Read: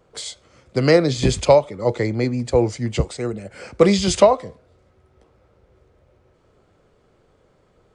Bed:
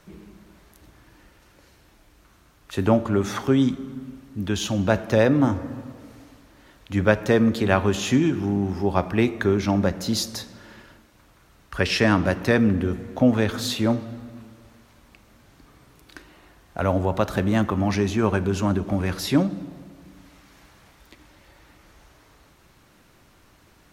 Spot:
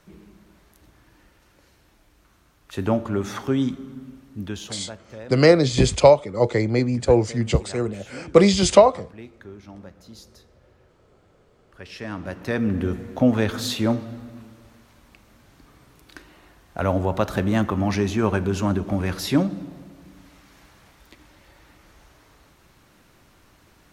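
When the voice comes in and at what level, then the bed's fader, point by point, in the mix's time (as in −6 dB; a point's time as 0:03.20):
4.55 s, +0.5 dB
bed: 0:04.40 −3 dB
0:05.01 −21 dB
0:11.71 −21 dB
0:12.85 0 dB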